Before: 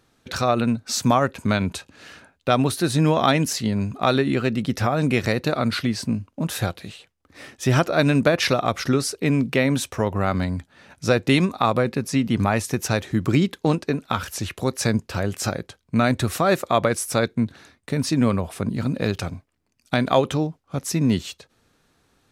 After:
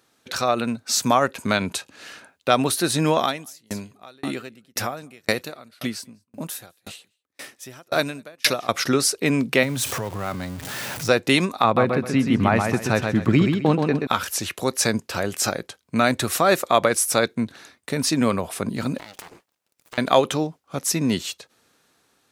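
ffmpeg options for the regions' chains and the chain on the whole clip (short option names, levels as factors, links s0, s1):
-filter_complex "[0:a]asettb=1/sr,asplit=3[s0][s1][s2];[s0]atrim=end=3.184[s3];[s1]atrim=start=3.18:end=8.69,asetpts=PTS-STARTPTS,afade=t=in:d=0.004:c=qsin,afade=t=out:st=5.506:d=0.004:c=qsin,highshelf=f=9300:g=11,aecho=1:1:201:0.119,atrim=end_sample=242991,aeval=exprs='val(0)*pow(10,-38*if(lt(mod(1.9*n/s,1),2*abs(1.9)/1000),1-mod(1.9*n/s,1)/(2*abs(1.9)/1000),(mod(1.9*n/s,1)-2*abs(1.9)/1000)/(1-2*abs(1.9)/1000))/20)':c=same[s4];[s2]atrim=start=8.686[s5];[s3][s4]acrossfade=d=0.004:c1=hsin:c2=qsin[s6];[s6][s5]acrossfade=d=0.004:c1=qsin:c2=hsin,asettb=1/sr,asplit=3[s7][s8][s9];[s7]atrim=end=9.634[s10];[s8]atrim=start=9.63:end=11.09,asetpts=PTS-STARTPTS,afade=t=in:d=0.004:c=qsin,afade=t=out:st=1.456:d=0.004:c=qsin,aeval=exprs='val(0)+0.5*0.0355*sgn(val(0))':c=same,equalizer=f=120:w=2.5:g=13.5,acompressor=threshold=0.0562:ratio=2.5:attack=3.2:release=140:knee=1:detection=peak[s11];[s9]atrim=start=11.086[s12];[s10][s11]acrossfade=d=0.004:c1=hsin:c2=qsin[s13];[s13][s12]acrossfade=d=0.004:c1=qsin:c2=hsin,asettb=1/sr,asplit=3[s14][s15][s16];[s14]atrim=end=11.644[s17];[s15]atrim=start=11.64:end=14.07,asetpts=PTS-STARTPTS,afade=t=in:d=0.004:c=qsin,afade=t=out:st=2.426:d=0.004:c=qsin,bass=f=250:g=6,treble=f=4000:g=-14,aecho=1:1:129|258|387|516:0.562|0.157|0.0441|0.0123,atrim=end_sample=107163[s18];[s16]atrim=start=14.066[s19];[s17][s18]acrossfade=d=0.004:c1=hsin:c2=qsin[s20];[s20][s19]acrossfade=d=0.004:c1=qsin:c2=hsin,asettb=1/sr,asplit=3[s21][s22][s23];[s21]atrim=end=18.984[s24];[s22]atrim=start=18.98:end=19.98,asetpts=PTS-STARTPTS,afade=t=in:d=0.004:c=qsin,afade=t=out:st=0.996:d=0.004:c=qsin,highpass=f=320:p=1,acompressor=threshold=0.0178:ratio=16:attack=3.2:release=140:knee=1:detection=peak,aeval=exprs='abs(val(0))':c=same[s25];[s23]atrim=start=19.976[s26];[s24][s25]acrossfade=d=0.004:c1=hsin:c2=qsin[s27];[s27][s26]acrossfade=d=0.004:c1=qsin:c2=hsin,highpass=f=330:p=1,highshelf=f=6200:g=5.5,dynaudnorm=f=800:g=3:m=1.78"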